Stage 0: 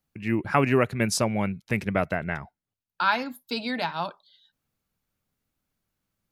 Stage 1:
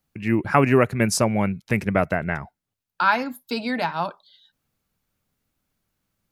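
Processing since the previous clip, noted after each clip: dynamic EQ 3600 Hz, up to -7 dB, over -47 dBFS, Q 1.7; gain +4.5 dB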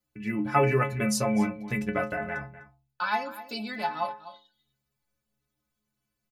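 metallic resonator 63 Hz, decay 0.71 s, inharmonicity 0.03; outdoor echo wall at 43 m, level -15 dB; gain +5.5 dB

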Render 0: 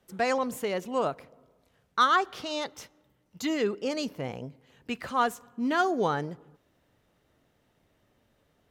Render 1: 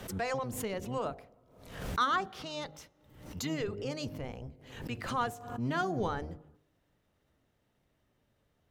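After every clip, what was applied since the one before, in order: octaver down 1 oct, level 0 dB; de-hum 51.13 Hz, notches 16; backwards sustainer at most 73 dB/s; gain -7 dB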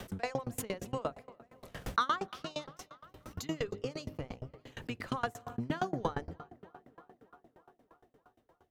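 tape echo 0.307 s, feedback 81%, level -19 dB, low-pass 3600 Hz; dB-ramp tremolo decaying 8.6 Hz, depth 27 dB; gain +5.5 dB

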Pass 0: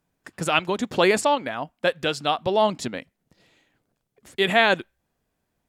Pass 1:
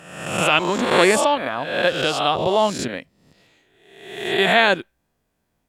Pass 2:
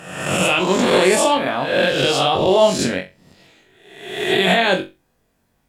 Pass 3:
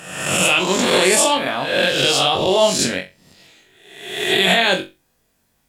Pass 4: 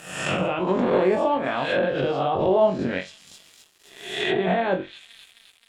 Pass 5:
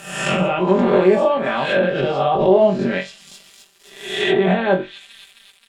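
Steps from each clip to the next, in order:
spectral swells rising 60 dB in 0.91 s; gain +1 dB
dynamic EQ 1300 Hz, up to -5 dB, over -30 dBFS, Q 0.97; limiter -12 dBFS, peak gain reduction 8 dB; on a send: flutter echo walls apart 3.7 m, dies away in 0.25 s; on the sum: gain +5 dB
high shelf 2400 Hz +9.5 dB; gain -2.5 dB
thin delay 0.262 s, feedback 72%, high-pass 2800 Hz, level -19 dB; crossover distortion -43.5 dBFS; treble ducked by the level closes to 1000 Hz, closed at -14 dBFS; gain -2 dB
comb 5.1 ms, depth 71%; gain +3.5 dB

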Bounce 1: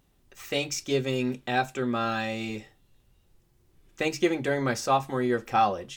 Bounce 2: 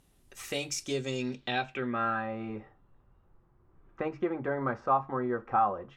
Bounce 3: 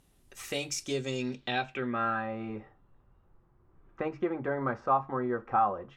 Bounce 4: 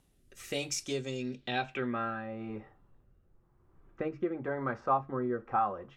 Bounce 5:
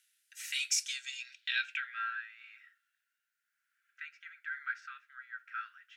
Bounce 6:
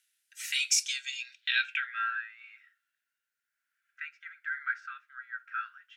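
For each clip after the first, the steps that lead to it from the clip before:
compressor 1.5:1, threshold -40 dBFS, peak gain reduction 8 dB; low-pass sweep 11000 Hz -> 1200 Hz, 0.81–2.25
nothing audible
rotary speaker horn 1 Hz
Chebyshev high-pass 1400 Hz, order 8; gain +5 dB
spectral noise reduction 7 dB; gain +5 dB

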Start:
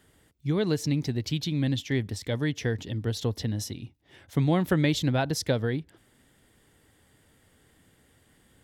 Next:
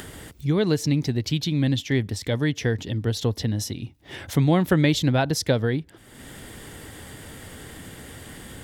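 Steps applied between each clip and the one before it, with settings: upward compressor, threshold -30 dBFS; gain +4.5 dB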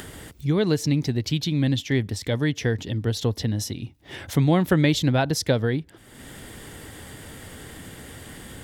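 nothing audible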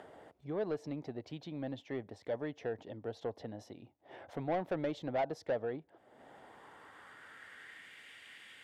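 band-pass sweep 680 Hz -> 2400 Hz, 6.15–8.04; soft clip -25 dBFS, distortion -12 dB; gain -2.5 dB

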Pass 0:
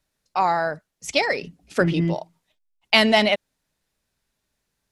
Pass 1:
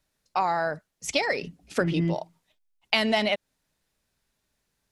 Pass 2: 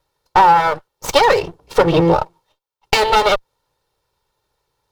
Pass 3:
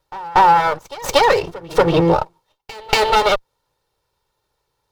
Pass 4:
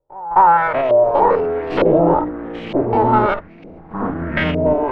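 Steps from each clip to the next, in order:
compressor 3:1, threshold -22 dBFS, peak gain reduction 8.5 dB
minimum comb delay 2.2 ms; graphic EQ 125/500/1000/2000/4000/8000 Hz +6/+6/+11/-4/+4/-4 dB; sample leveller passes 1; gain +6 dB
pre-echo 0.236 s -19.5 dB; gain -1 dB
stepped spectrum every 50 ms; echoes that change speed 0.229 s, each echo -6 st, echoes 3; LFO low-pass saw up 1.1 Hz 520–2900 Hz; gain -3.5 dB

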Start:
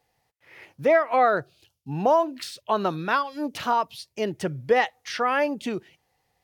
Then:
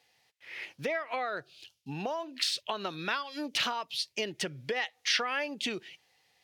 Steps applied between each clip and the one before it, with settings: compressor 6:1, threshold -30 dBFS, peak gain reduction 14.5 dB; weighting filter D; gain -2 dB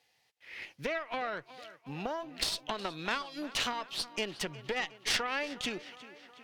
added harmonics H 4 -13 dB, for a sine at -14.5 dBFS; tape echo 0.364 s, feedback 68%, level -16 dB, low-pass 5100 Hz; gain -3 dB

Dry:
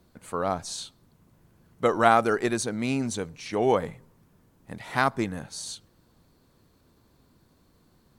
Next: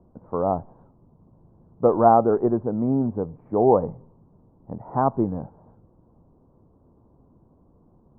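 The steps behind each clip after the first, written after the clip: steep low-pass 1000 Hz 36 dB/oct; gain +5.5 dB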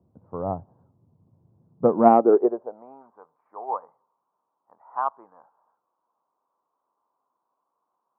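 high-pass sweep 100 Hz -> 1100 Hz, 1.55–3.03; added harmonics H 3 -32 dB, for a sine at -2 dBFS; upward expander 1.5:1, over -29 dBFS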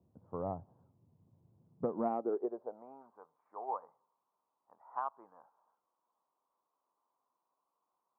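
compressor 4:1, threshold -26 dBFS, peak gain reduction 14 dB; gain -7 dB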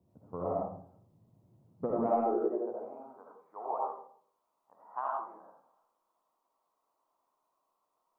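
reverb RT60 0.55 s, pre-delay 35 ms, DRR -3.5 dB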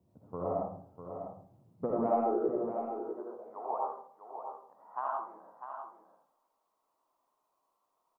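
echo 0.649 s -8.5 dB

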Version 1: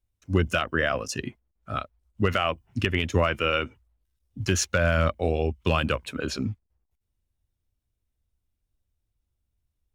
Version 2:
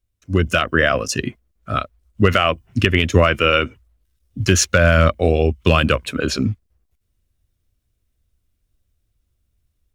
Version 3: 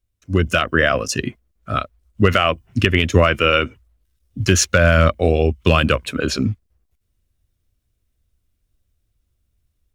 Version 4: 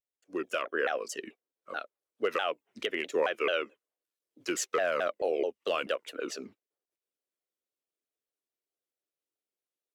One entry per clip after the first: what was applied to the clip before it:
AGC gain up to 6 dB; bell 870 Hz -10 dB 0.25 oct; gain +3.5 dB
nothing audible
ladder high-pass 350 Hz, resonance 40%; shaped vibrato saw down 4.6 Hz, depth 250 cents; gain -7.5 dB

